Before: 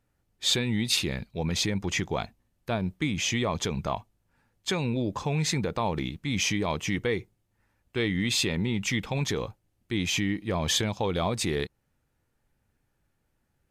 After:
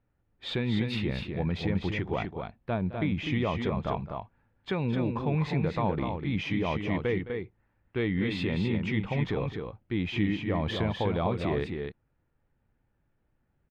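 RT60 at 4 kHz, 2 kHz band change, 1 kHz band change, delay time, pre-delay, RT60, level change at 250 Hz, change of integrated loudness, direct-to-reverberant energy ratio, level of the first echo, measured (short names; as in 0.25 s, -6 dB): none, -4.0 dB, -1.0 dB, 0.213 s, none, none, +0.5 dB, -2.0 dB, none, -15.0 dB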